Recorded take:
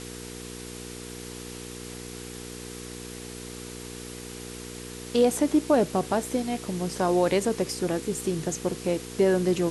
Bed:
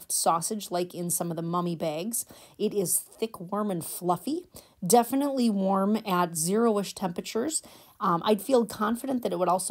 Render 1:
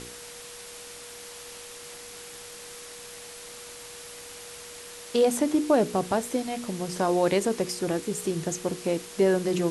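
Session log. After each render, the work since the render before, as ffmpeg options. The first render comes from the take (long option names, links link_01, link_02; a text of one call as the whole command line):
ffmpeg -i in.wav -af "bandreject=frequency=60:width_type=h:width=4,bandreject=frequency=120:width_type=h:width=4,bandreject=frequency=180:width_type=h:width=4,bandreject=frequency=240:width_type=h:width=4,bandreject=frequency=300:width_type=h:width=4,bandreject=frequency=360:width_type=h:width=4,bandreject=frequency=420:width_type=h:width=4" out.wav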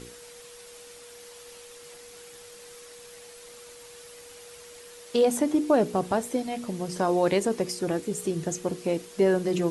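ffmpeg -i in.wav -af "afftdn=noise_reduction=7:noise_floor=-43" out.wav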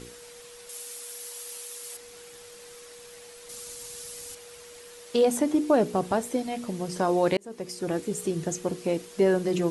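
ffmpeg -i in.wav -filter_complex "[0:a]asettb=1/sr,asplit=3[link_01][link_02][link_03];[link_01]atrim=end=0.694[link_04];[link_02]atrim=start=0.69:end=1.97,asetpts=PTS-STARTPTS,afade=type=in:duration=0.004:curve=qsin,afade=type=out:start_time=1.276:duration=0.004:curve=qsin,aemphasis=mode=production:type=bsi[link_05];[link_03]atrim=start=1.966[link_06];[link_04][link_05]acrossfade=duration=0.004:curve1=hsin:curve2=qsin[link_07];[link_07][link_06]acrossfade=duration=0.004:curve1=qsin:curve2=hsin,asettb=1/sr,asplit=3[link_08][link_09][link_10];[link_08]atrim=end=3.494[link_11];[link_09]atrim=start=3.49:end=4.35,asetpts=PTS-STARTPTS,afade=type=in:duration=0.004:curve=qsin,afade=type=out:start_time=0.856:duration=0.004:curve=qsin,bass=frequency=250:gain=6,treble=frequency=4000:gain=10[link_12];[link_10]atrim=start=4.346[link_13];[link_11][link_12]acrossfade=duration=0.004:curve1=hsin:curve2=qsin[link_14];[link_14][link_13]acrossfade=duration=0.004:curve1=qsin:curve2=hsin,asplit=2[link_15][link_16];[link_15]atrim=end=7.37,asetpts=PTS-STARTPTS,afade=type=out:start_time=7.366:duration=0.004:curve=hsin[link_17];[link_16]atrim=start=7.37,asetpts=PTS-STARTPTS,afade=type=in:duration=0.61[link_18];[link_17][link_18]concat=n=2:v=0:a=1" out.wav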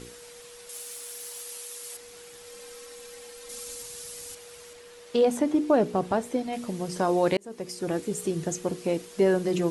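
ffmpeg -i in.wav -filter_complex "[0:a]asettb=1/sr,asplit=3[link_01][link_02][link_03];[link_01]atrim=end=0.754[link_04];[link_02]atrim=start=0.75:end=1.42,asetpts=PTS-STARTPTS,afade=type=in:duration=0.004:curve=qsin,afade=type=out:start_time=0.666:duration=0.004:curve=qsin,acrusher=bits=3:mode=log:mix=0:aa=0.000001[link_05];[link_03]atrim=start=1.416[link_06];[link_04][link_05]acrossfade=duration=0.004:curve1=hsin:curve2=qsin[link_07];[link_07][link_06]acrossfade=duration=0.004:curve1=qsin:curve2=hsin,asettb=1/sr,asplit=3[link_08][link_09][link_10];[link_08]atrim=end=2.464[link_11];[link_09]atrim=start=2.46:end=3.82,asetpts=PTS-STARTPTS,afade=type=in:duration=0.004:curve=qsin,afade=type=out:start_time=1.356:duration=0.004:curve=qsin,aecho=1:1:3.8:0.65,atrim=end_sample=59976[link_12];[link_10]atrim=start=3.816[link_13];[link_11][link_12]acrossfade=duration=0.004:curve1=hsin:curve2=qsin[link_14];[link_14][link_13]acrossfade=duration=0.004:curve1=qsin:curve2=hsin,asettb=1/sr,asplit=3[link_15][link_16][link_17];[link_15]atrim=end=4.734[link_18];[link_16]atrim=start=4.73:end=6.53,asetpts=PTS-STARTPTS,afade=type=in:duration=0.004:curve=qsin,afade=type=out:start_time=1.796:duration=0.004:curve=qsin,highshelf=frequency=6100:gain=-9.5[link_19];[link_17]atrim=start=6.526[link_20];[link_18][link_19]acrossfade=duration=0.004:curve1=hsin:curve2=qsin[link_21];[link_21][link_20]acrossfade=duration=0.004:curve1=qsin:curve2=hsin" out.wav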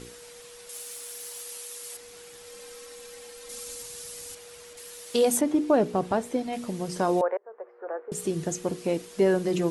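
ffmpeg -i in.wav -filter_complex "[0:a]asettb=1/sr,asplit=3[link_01][link_02][link_03];[link_01]atrim=end=4.774[link_04];[link_02]atrim=start=4.77:end=5.41,asetpts=PTS-STARTPTS,afade=type=in:duration=0.004:curve=qsin,afade=type=out:start_time=0.636:duration=0.004:curve=qsin,aemphasis=mode=production:type=75fm[link_05];[link_03]atrim=start=5.406[link_06];[link_04][link_05]acrossfade=duration=0.004:curve1=hsin:curve2=qsin[link_07];[link_07][link_06]acrossfade=duration=0.004:curve1=qsin:curve2=hsin,asettb=1/sr,asplit=3[link_08][link_09][link_10];[link_08]atrim=end=7.214[link_11];[link_09]atrim=start=7.21:end=8.12,asetpts=PTS-STARTPTS,afade=type=in:duration=0.004:curve=qsin,afade=type=out:start_time=0.906:duration=0.004:curve=qsin,asuperpass=centerf=870:order=8:qfactor=0.75[link_12];[link_10]atrim=start=8.116[link_13];[link_11][link_12]acrossfade=duration=0.004:curve1=hsin:curve2=qsin[link_14];[link_14][link_13]acrossfade=duration=0.004:curve1=qsin:curve2=hsin" out.wav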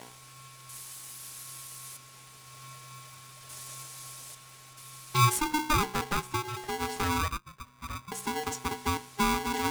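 ffmpeg -i in.wav -af "flanger=delay=5.3:depth=1.2:regen=67:speed=0.89:shape=triangular,aeval=exprs='val(0)*sgn(sin(2*PI*610*n/s))':channel_layout=same" out.wav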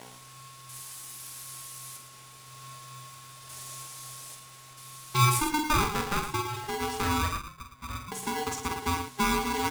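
ffmpeg -i in.wav -af "aecho=1:1:47|111:0.501|0.355" out.wav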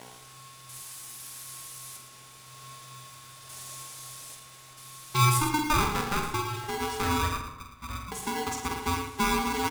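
ffmpeg -i in.wav -filter_complex "[0:a]asplit=2[link_01][link_02];[link_02]adelay=81,lowpass=frequency=3100:poles=1,volume=-9dB,asplit=2[link_03][link_04];[link_04]adelay=81,lowpass=frequency=3100:poles=1,volume=0.55,asplit=2[link_05][link_06];[link_06]adelay=81,lowpass=frequency=3100:poles=1,volume=0.55,asplit=2[link_07][link_08];[link_08]adelay=81,lowpass=frequency=3100:poles=1,volume=0.55,asplit=2[link_09][link_10];[link_10]adelay=81,lowpass=frequency=3100:poles=1,volume=0.55,asplit=2[link_11][link_12];[link_12]adelay=81,lowpass=frequency=3100:poles=1,volume=0.55[link_13];[link_01][link_03][link_05][link_07][link_09][link_11][link_13]amix=inputs=7:normalize=0" out.wav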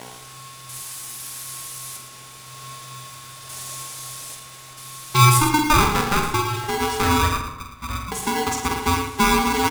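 ffmpeg -i in.wav -af "volume=8.5dB" out.wav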